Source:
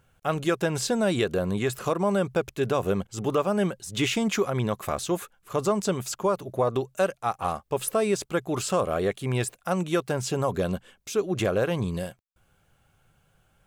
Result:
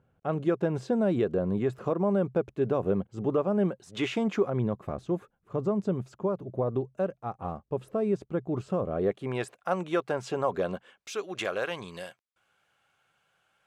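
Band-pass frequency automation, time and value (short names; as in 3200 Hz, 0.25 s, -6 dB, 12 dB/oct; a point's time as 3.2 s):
band-pass, Q 0.52
3.64 s 270 Hz
3.93 s 880 Hz
4.78 s 170 Hz
8.89 s 170 Hz
9.38 s 840 Hz
10.75 s 840 Hz
11.17 s 2100 Hz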